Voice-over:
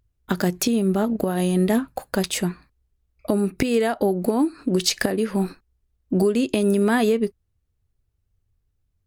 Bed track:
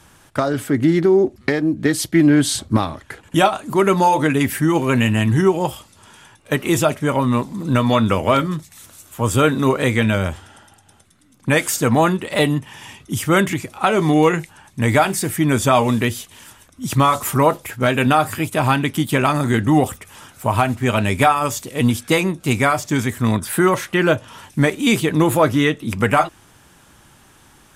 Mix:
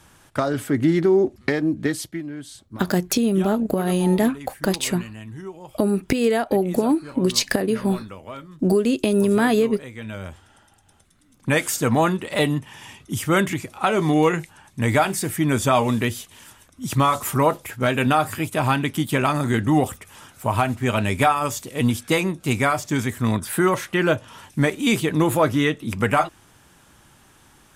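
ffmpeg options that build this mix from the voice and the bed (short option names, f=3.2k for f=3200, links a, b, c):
-filter_complex "[0:a]adelay=2500,volume=1dB[a];[1:a]volume=14dB,afade=t=out:st=1.74:d=0.49:silence=0.133352,afade=t=in:st=9.93:d=1.4:silence=0.141254[b];[a][b]amix=inputs=2:normalize=0"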